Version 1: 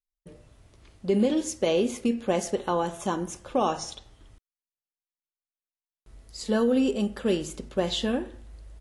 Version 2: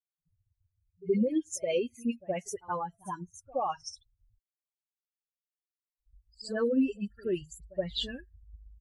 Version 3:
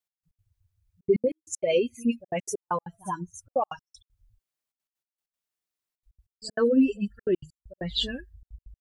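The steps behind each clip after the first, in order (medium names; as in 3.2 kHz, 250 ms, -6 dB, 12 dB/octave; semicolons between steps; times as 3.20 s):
expander on every frequency bin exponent 3; phase dispersion highs, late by 62 ms, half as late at 2.4 kHz; reverse echo 72 ms -22 dB
trance gate "x..x.xxxxxxxx.x." 194 bpm -60 dB; trim +6 dB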